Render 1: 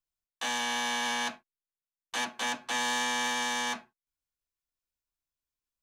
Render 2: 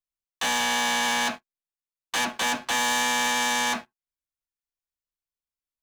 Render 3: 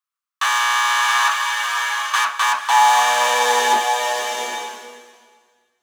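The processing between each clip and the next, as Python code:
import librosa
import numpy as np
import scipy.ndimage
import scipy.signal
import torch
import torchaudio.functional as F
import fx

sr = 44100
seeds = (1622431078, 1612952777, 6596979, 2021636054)

y1 = fx.leveller(x, sr, passes=3)
y2 = fx.filter_sweep_highpass(y1, sr, from_hz=1200.0, to_hz=86.0, start_s=2.39, end_s=5.59, q=5.9)
y2 = fx.rev_bloom(y2, sr, seeds[0], attack_ms=850, drr_db=2.5)
y2 = y2 * 10.0 ** (2.5 / 20.0)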